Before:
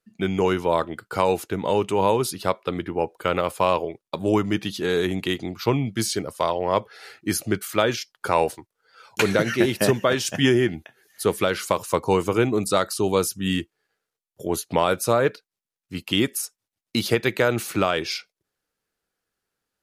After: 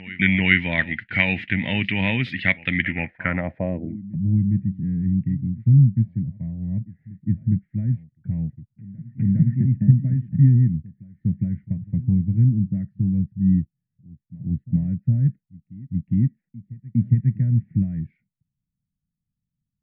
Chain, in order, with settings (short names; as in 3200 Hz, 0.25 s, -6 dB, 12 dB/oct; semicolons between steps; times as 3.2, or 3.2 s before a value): EQ curve 250 Hz 0 dB, 420 Hz -25 dB, 650 Hz -14 dB, 1200 Hz -26 dB, 1900 Hz +15 dB, 2800 Hz -4 dB, 7200 Hz -28 dB; reverse echo 0.409 s -19.5 dB; low-pass sweep 3100 Hz -> 150 Hz, 2.87–4.18; gain +6.5 dB